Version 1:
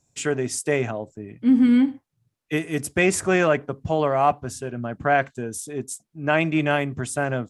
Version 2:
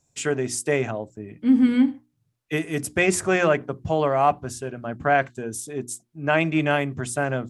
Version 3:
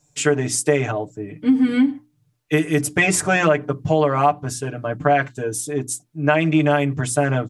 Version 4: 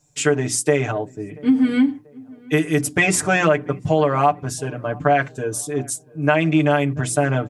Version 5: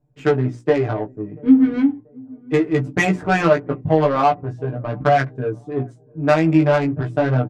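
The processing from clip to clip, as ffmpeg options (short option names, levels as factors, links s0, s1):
-af "bandreject=f=60:t=h:w=6,bandreject=f=120:t=h:w=6,bandreject=f=180:t=h:w=6,bandreject=f=240:t=h:w=6,bandreject=f=300:t=h:w=6,bandreject=f=360:t=h:w=6"
-af "aecho=1:1:6.7:0.88,acompressor=threshold=0.158:ratio=6,volume=1.58"
-filter_complex "[0:a]asplit=2[s0][s1];[s1]adelay=685,lowpass=f=1200:p=1,volume=0.0668,asplit=2[s2][s3];[s3]adelay=685,lowpass=f=1200:p=1,volume=0.42,asplit=2[s4][s5];[s5]adelay=685,lowpass=f=1200:p=1,volume=0.42[s6];[s0][s2][s4][s6]amix=inputs=4:normalize=0"
-filter_complex "[0:a]adynamicsmooth=sensitivity=0.5:basefreq=790,flanger=delay=15.5:depth=3.3:speed=0.38,asplit=2[s0][s1];[s1]adelay=15,volume=0.282[s2];[s0][s2]amix=inputs=2:normalize=0,volume=1.58"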